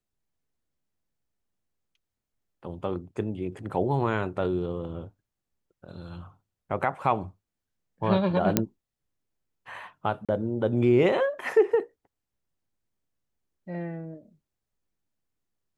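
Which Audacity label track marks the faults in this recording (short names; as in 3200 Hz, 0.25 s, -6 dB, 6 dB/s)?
8.570000	8.570000	pop -5 dBFS
10.250000	10.290000	gap 36 ms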